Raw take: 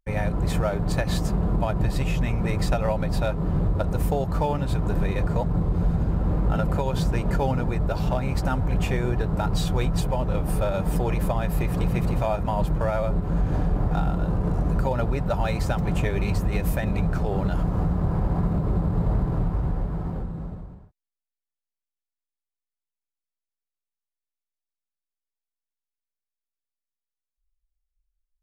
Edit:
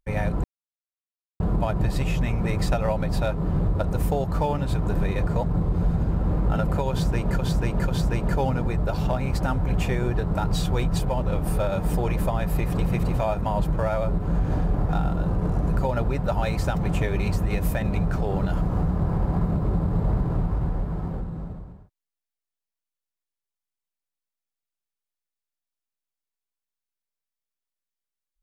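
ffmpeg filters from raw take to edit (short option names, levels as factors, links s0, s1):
-filter_complex "[0:a]asplit=5[s0][s1][s2][s3][s4];[s0]atrim=end=0.44,asetpts=PTS-STARTPTS,afade=t=out:st=0.436:d=0.004:c=hsin[s5];[s1]atrim=start=0.44:end=1.4,asetpts=PTS-STARTPTS,volume=0[s6];[s2]atrim=start=1.4:end=7.392,asetpts=PTS-STARTPTS,afade=t=in:d=0.004:c=hsin[s7];[s3]atrim=start=6.898:end=7.392[s8];[s4]atrim=start=6.898[s9];[s5][s6][s7]concat=n=3:v=0:a=1[s10];[s10][s8]acrossfade=d=0.004:c1=hsin:c2=hsin[s11];[s11][s9]acrossfade=d=0.004:c1=hsin:c2=hsin"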